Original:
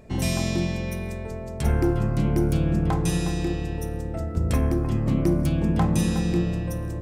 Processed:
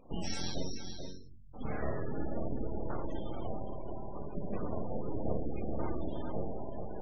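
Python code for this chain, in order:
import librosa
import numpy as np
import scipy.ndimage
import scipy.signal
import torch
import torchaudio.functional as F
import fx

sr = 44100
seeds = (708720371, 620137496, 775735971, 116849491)

y = fx.rider(x, sr, range_db=3, speed_s=2.0)
y = fx.cheby2_bandstop(y, sr, low_hz=240.0, high_hz=5100.0, order=4, stop_db=70, at=(0.66, 1.53), fade=0.02)
y = fx.resonator_bank(y, sr, root=42, chord='sus4', decay_s=0.73)
y = fx.room_flutter(y, sr, wall_m=6.9, rt60_s=0.36, at=(4.87, 6.05))
y = np.abs(y)
y = scipy.signal.sosfilt(scipy.signal.butter(2, 8100.0, 'lowpass', fs=sr, output='sos'), y)
y = y + 10.0 ** (-6.5 / 20.0) * np.pad(y, (int(434 * sr / 1000.0), 0))[:len(y)]
y = fx.spec_gate(y, sr, threshold_db=-30, keep='strong')
y = y * 10.0 ** (11.0 / 20.0)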